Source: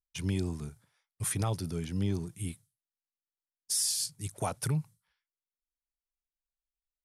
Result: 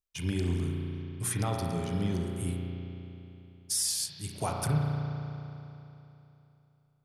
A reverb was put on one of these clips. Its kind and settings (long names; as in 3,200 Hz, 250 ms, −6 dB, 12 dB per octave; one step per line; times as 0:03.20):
spring reverb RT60 3.1 s, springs 34 ms, chirp 35 ms, DRR −0.5 dB